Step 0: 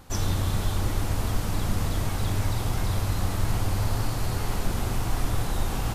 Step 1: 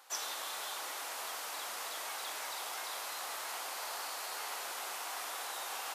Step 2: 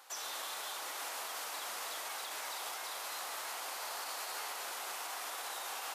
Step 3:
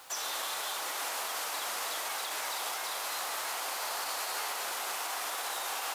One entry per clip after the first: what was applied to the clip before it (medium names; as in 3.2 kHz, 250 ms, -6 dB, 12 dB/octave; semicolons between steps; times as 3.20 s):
Bessel high-pass 880 Hz, order 4; trim -3 dB
peak limiter -33.5 dBFS, peak gain reduction 9 dB; trim +1.5 dB
bit crusher 10-bit; trim +6 dB